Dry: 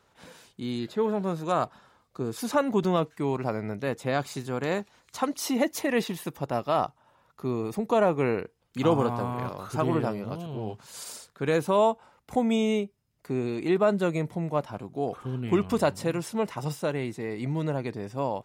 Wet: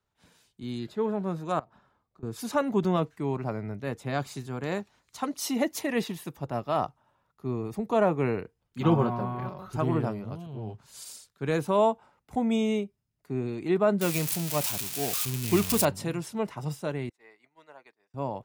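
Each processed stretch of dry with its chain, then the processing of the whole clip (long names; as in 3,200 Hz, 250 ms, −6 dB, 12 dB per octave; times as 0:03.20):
0:01.59–0:02.23: high-shelf EQ 3,300 Hz −9.5 dB + downward compressor 12 to 1, threshold −42 dBFS + hum removal 113.1 Hz, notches 8
0:08.80–0:09.73: parametric band 8,600 Hz −12 dB 1 octave + comb filter 5.4 ms, depth 72%
0:14.01–0:15.85: spike at every zero crossing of −17.5 dBFS + parametric band 2,500 Hz +5 dB 0.2 octaves
0:17.09–0:18.14: high-pass filter 980 Hz + downward expander −42 dBFS + high-shelf EQ 3,100 Hz −9.5 dB
whole clip: low-shelf EQ 160 Hz +6.5 dB; notch filter 510 Hz, Q 13; multiband upward and downward expander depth 40%; level −3 dB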